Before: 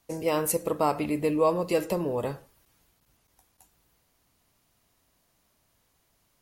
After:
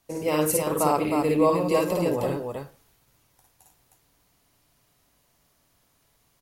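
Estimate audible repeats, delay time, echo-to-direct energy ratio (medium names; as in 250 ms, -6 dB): 2, 52 ms, 1.0 dB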